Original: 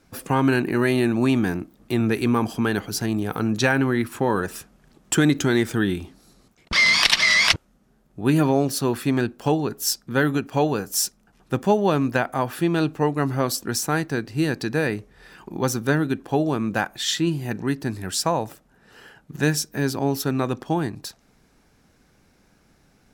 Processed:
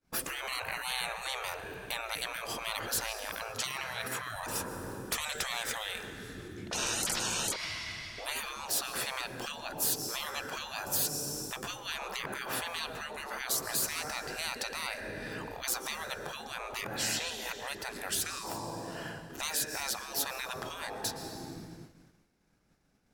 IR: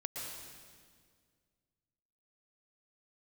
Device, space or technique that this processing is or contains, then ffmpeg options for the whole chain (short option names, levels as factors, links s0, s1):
ducked reverb: -filter_complex "[0:a]asplit=3[s0][s1][s2];[1:a]atrim=start_sample=2205[s3];[s1][s3]afir=irnorm=-1:irlink=0[s4];[s2]apad=whole_len=1020358[s5];[s4][s5]sidechaincompress=threshold=0.0562:ratio=8:attack=6.9:release=839,volume=0.668[s6];[s0][s6]amix=inputs=2:normalize=0,asettb=1/sr,asplit=3[s7][s8][s9];[s7]atrim=end=3.424[s10];[s8]atrim=start=3.42:end=4.36,asetpts=PTS-STARTPTS,afade=t=in:d=0.004:c=qsin,afade=t=out:st=0.936:d=0.004:c=qsin,highpass=220[s11];[s9]atrim=start=4.356[s12];[s10][s11]acrossfade=d=0.004:c1=hsin:c2=qsin[s13];[s13][s12]acrossfade=d=0.004:c1=qsin:c2=hsin,agate=range=0.0224:threshold=0.00708:ratio=3:detection=peak,afftfilt=real='re*lt(hypot(re,im),0.0794)':imag='im*lt(hypot(re,im),0.0794)':win_size=1024:overlap=0.75"